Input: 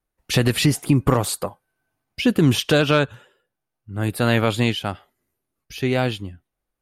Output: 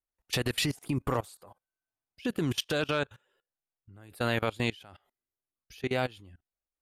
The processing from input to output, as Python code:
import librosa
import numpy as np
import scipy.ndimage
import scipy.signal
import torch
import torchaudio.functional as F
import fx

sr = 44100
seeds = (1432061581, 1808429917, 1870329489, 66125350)

y = fx.peak_eq(x, sr, hz=170.0, db=-5.5, octaves=2.0)
y = fx.level_steps(y, sr, step_db=23)
y = F.gain(torch.from_numpy(y), -5.0).numpy()